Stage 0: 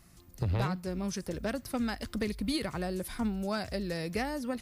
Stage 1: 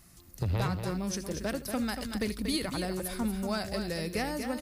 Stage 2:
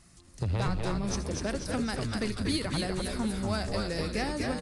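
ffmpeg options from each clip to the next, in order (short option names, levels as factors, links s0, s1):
-filter_complex "[0:a]highshelf=f=5200:g=6.5,asplit=2[s0][s1];[s1]aecho=0:1:79|236:0.141|0.422[s2];[s0][s2]amix=inputs=2:normalize=0"
-filter_complex "[0:a]aresample=22050,aresample=44100,asplit=7[s0][s1][s2][s3][s4][s5][s6];[s1]adelay=246,afreqshift=-120,volume=0.631[s7];[s2]adelay=492,afreqshift=-240,volume=0.292[s8];[s3]adelay=738,afreqshift=-360,volume=0.133[s9];[s4]adelay=984,afreqshift=-480,volume=0.0617[s10];[s5]adelay=1230,afreqshift=-600,volume=0.0282[s11];[s6]adelay=1476,afreqshift=-720,volume=0.013[s12];[s0][s7][s8][s9][s10][s11][s12]amix=inputs=7:normalize=0"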